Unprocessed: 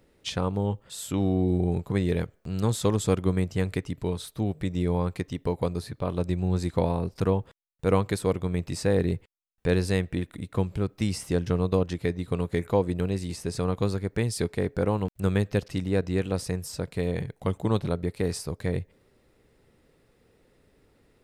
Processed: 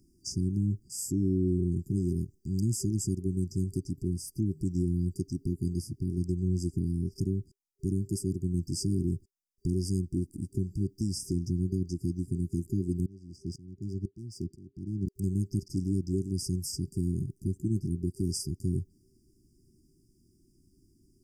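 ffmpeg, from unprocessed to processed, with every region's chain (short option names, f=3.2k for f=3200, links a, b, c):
-filter_complex "[0:a]asettb=1/sr,asplit=3[a][b][c];[a]atrim=end=13.064[d];[b]atrim=start=13.06:end=15.07,asetpts=PTS-STARTPTS,afade=t=in:d=0.004:c=qsin,afade=t=out:st=2.006:d=0.004:c=qsin,highpass=42,adynamicsmooth=sensitivity=5.5:basefreq=3k,aeval=exprs='val(0)*pow(10,-23*if(lt(mod(-2*n/s,1),2*abs(-2)/1000),1-mod(-2*n/s,1)/(2*abs(-2)/1000),(mod(-2*n/s,1)-2*abs(-2)/1000)/(1-2*abs(-2)/1000))/20)':c=same[e];[c]atrim=start=15.066[f];[d][e]acrossfade=d=0.004:c1=hsin:c2=qsin[g];[g][f]acrossfade=d=0.004:c1=qsin:c2=hsin,afftfilt=real='re*(1-between(b*sr/4096,390,4700))':imag='im*(1-between(b*sr/4096,390,4700))':win_size=4096:overlap=0.75,equalizer=f=5.2k:t=o:w=2.8:g=3,alimiter=limit=-19dB:level=0:latency=1:release=394"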